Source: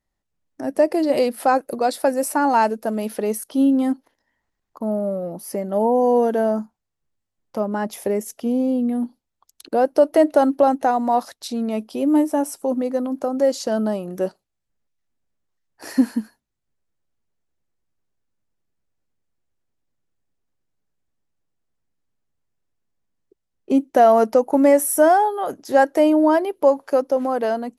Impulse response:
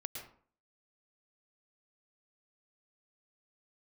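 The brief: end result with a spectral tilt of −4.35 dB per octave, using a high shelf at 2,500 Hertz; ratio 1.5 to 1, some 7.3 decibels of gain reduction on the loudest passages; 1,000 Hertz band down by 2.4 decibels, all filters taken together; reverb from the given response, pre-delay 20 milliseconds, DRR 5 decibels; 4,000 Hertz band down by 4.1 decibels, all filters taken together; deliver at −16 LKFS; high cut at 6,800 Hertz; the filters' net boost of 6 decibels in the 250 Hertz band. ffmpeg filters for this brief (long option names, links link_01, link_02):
-filter_complex "[0:a]lowpass=6800,equalizer=frequency=250:width_type=o:gain=7,equalizer=frequency=1000:width_type=o:gain=-4.5,highshelf=frequency=2500:gain=4.5,equalizer=frequency=4000:width_type=o:gain=-9,acompressor=threshold=-25dB:ratio=1.5,asplit=2[link_01][link_02];[1:a]atrim=start_sample=2205,adelay=20[link_03];[link_02][link_03]afir=irnorm=-1:irlink=0,volume=-3.5dB[link_04];[link_01][link_04]amix=inputs=2:normalize=0,volume=5dB"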